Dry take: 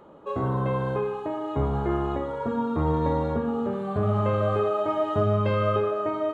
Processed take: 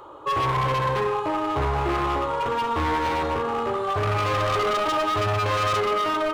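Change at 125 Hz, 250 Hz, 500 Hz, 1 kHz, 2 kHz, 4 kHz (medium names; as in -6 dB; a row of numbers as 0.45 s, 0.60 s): -2.0 dB, -3.5 dB, -0.5 dB, +7.0 dB, +11.0 dB, +14.5 dB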